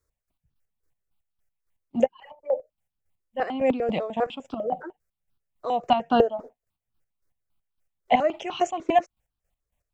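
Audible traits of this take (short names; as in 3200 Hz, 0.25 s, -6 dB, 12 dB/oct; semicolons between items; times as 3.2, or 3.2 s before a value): chopped level 3.6 Hz, depth 65%, duty 35%; notches that jump at a steady rate 10 Hz 780–2000 Hz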